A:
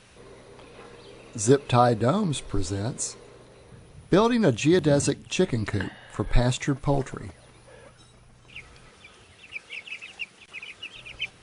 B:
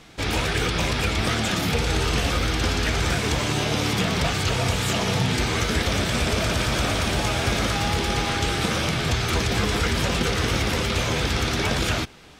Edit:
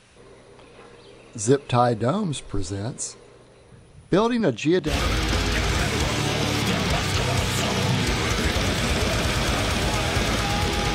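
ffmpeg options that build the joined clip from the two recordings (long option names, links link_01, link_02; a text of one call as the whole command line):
ffmpeg -i cue0.wav -i cue1.wav -filter_complex "[0:a]asettb=1/sr,asplit=3[link_01][link_02][link_03];[link_01]atrim=end=4.404[link_04];[link_02]atrim=start=4.4:end=4.93,asetpts=PTS-STARTPTS,afade=type=in:duration=0.004:curve=qsin,afade=type=out:start_time=0.526:duration=0.004:curve=qsin,highpass=140,lowpass=6300[link_05];[link_03]atrim=start=4.926[link_06];[link_04][link_05]acrossfade=duration=0.004:curve1=hsin:curve2=qsin[link_07];[link_07][link_06]acrossfade=duration=0.004:curve1=qsin:curve2=hsin,apad=whole_dur=10.94,atrim=end=10.94,atrim=end=4.93,asetpts=PTS-STARTPTS[link_08];[1:a]atrim=start=2.16:end=8.25,asetpts=PTS-STARTPTS[link_09];[link_08][link_09]acrossfade=duration=0.08:curve1=tri:curve2=tri" out.wav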